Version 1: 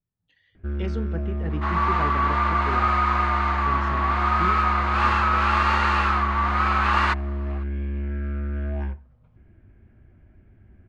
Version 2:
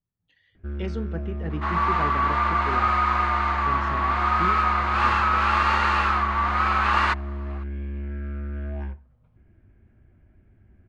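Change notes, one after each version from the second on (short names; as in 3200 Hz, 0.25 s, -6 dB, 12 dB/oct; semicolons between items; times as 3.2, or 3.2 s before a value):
first sound -3.5 dB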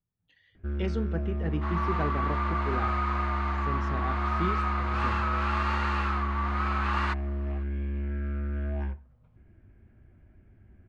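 second sound -9.0 dB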